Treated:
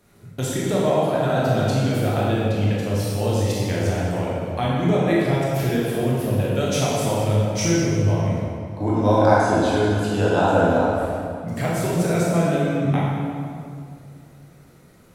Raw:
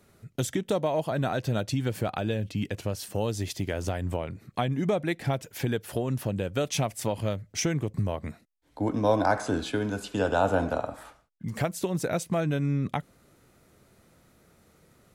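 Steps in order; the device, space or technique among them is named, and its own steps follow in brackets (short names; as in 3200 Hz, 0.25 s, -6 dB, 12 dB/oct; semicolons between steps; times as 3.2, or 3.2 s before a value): stairwell (reverb RT60 2.3 s, pre-delay 17 ms, DRR -6.5 dB)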